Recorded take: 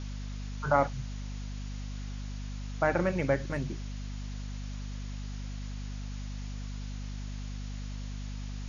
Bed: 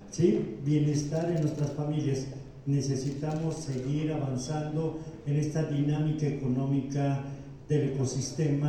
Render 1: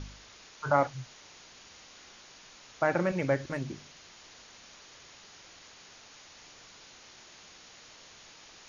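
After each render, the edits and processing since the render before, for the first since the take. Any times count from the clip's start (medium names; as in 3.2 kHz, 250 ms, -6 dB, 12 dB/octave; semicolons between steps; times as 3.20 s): de-hum 50 Hz, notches 5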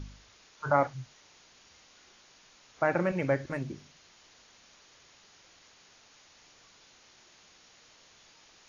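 noise print and reduce 6 dB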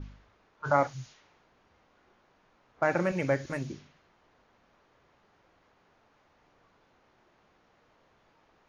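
treble shelf 6.1 kHz +12 dB; level-controlled noise filter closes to 970 Hz, open at -29 dBFS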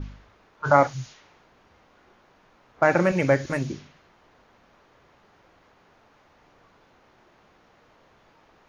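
trim +7.5 dB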